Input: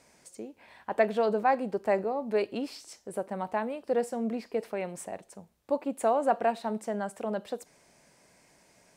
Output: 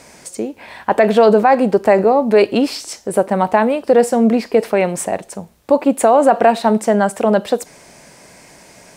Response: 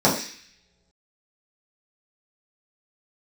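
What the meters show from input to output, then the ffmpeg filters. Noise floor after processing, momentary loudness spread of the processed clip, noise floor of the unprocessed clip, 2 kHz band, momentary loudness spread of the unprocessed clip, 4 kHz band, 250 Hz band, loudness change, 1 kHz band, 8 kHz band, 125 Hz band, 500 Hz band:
−45 dBFS, 15 LU, −63 dBFS, +15.0 dB, 17 LU, +18.0 dB, +18.0 dB, +16.0 dB, +15.0 dB, +18.5 dB, +18.0 dB, +16.0 dB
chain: -af "alimiter=level_in=19.5dB:limit=-1dB:release=50:level=0:latency=1,volume=-1dB"

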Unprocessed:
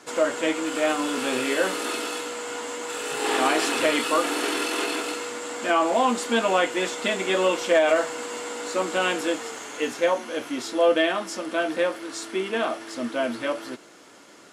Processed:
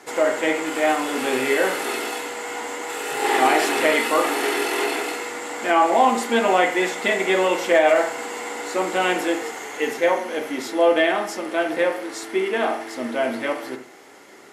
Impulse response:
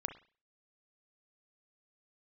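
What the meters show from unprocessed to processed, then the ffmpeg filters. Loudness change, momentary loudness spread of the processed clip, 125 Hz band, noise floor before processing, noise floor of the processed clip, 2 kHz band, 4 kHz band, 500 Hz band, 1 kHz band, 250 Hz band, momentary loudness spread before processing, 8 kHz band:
+3.5 dB, 12 LU, can't be measured, −49 dBFS, −45 dBFS, +4.5 dB, 0.0 dB, +3.0 dB, +5.0 dB, +2.0 dB, 10 LU, +0.5 dB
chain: -filter_complex "[0:a]equalizer=frequency=400:width_type=o:width=0.33:gain=8,equalizer=frequency=800:width_type=o:width=0.33:gain=9,equalizer=frequency=2000:width_type=o:width=0.33:gain=9,equalizer=frequency=12500:width_type=o:width=0.33:gain=10[link_01];[1:a]atrim=start_sample=2205,asetrate=37926,aresample=44100[link_02];[link_01][link_02]afir=irnorm=-1:irlink=0"

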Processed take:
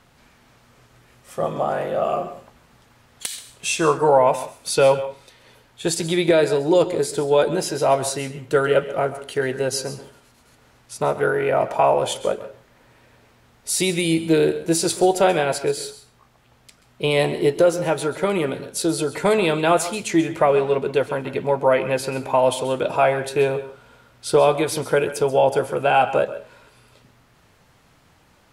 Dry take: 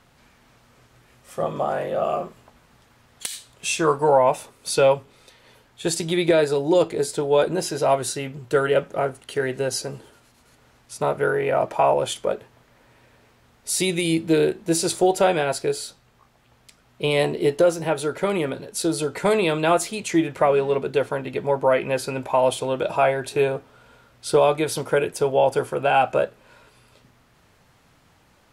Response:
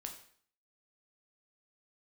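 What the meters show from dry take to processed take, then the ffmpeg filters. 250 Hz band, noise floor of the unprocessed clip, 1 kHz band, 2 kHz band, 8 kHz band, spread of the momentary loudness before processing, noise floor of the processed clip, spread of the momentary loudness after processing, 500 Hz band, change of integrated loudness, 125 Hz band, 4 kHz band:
+1.5 dB, −58 dBFS, +1.5 dB, +1.5 dB, +1.5 dB, 10 LU, −56 dBFS, 10 LU, +1.5 dB, +1.5 dB, +1.5 dB, +1.5 dB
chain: -filter_complex "[0:a]asplit=2[link_01][link_02];[1:a]atrim=start_sample=2205,asetrate=66150,aresample=44100,adelay=132[link_03];[link_02][link_03]afir=irnorm=-1:irlink=0,volume=-6.5dB[link_04];[link_01][link_04]amix=inputs=2:normalize=0,volume=1.5dB"

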